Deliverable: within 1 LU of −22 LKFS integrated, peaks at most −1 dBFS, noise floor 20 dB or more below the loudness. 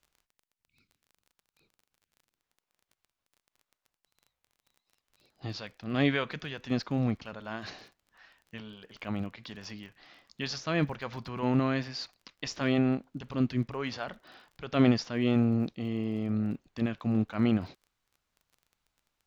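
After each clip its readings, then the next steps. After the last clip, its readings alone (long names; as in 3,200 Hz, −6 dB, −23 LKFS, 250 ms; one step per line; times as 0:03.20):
crackle rate 26 per second; integrated loudness −31.0 LKFS; sample peak −12.0 dBFS; target loudness −22.0 LKFS
→ click removal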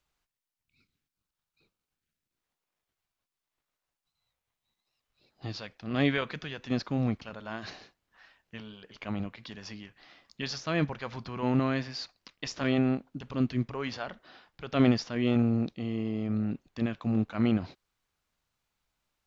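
crackle rate 0 per second; integrated loudness −31.0 LKFS; sample peak −12.0 dBFS; target loudness −22.0 LKFS
→ level +9 dB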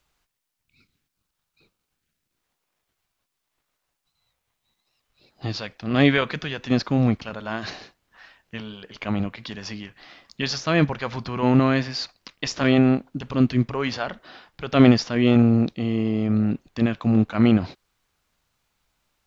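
integrated loudness −22.0 LKFS; sample peak −3.0 dBFS; background noise floor −80 dBFS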